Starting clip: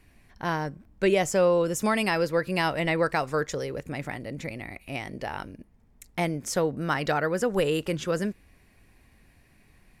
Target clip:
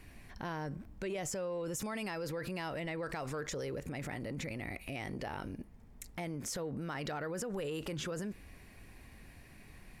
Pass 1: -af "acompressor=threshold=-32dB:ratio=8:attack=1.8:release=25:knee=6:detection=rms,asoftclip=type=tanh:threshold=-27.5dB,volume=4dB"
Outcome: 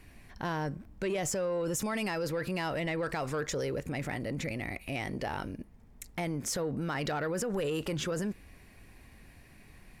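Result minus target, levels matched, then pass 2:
downward compressor: peak gain reduction −7 dB
-af "acompressor=threshold=-40dB:ratio=8:attack=1.8:release=25:knee=6:detection=rms,asoftclip=type=tanh:threshold=-27.5dB,volume=4dB"

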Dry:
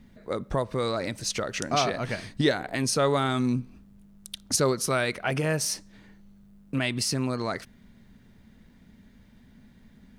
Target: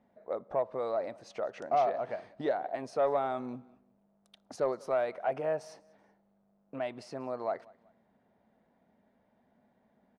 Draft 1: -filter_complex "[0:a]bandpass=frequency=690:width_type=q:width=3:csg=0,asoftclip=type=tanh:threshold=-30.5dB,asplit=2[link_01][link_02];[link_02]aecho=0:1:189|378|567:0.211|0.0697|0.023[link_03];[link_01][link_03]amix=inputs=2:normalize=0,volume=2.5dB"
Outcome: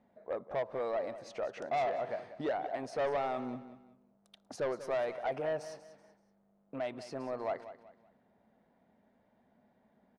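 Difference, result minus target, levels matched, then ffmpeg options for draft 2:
soft clipping: distortion +15 dB; echo-to-direct +11 dB
-filter_complex "[0:a]bandpass=frequency=690:width_type=q:width=3:csg=0,asoftclip=type=tanh:threshold=-19.5dB,asplit=2[link_01][link_02];[link_02]aecho=0:1:189|378:0.0596|0.0197[link_03];[link_01][link_03]amix=inputs=2:normalize=0,volume=2.5dB"

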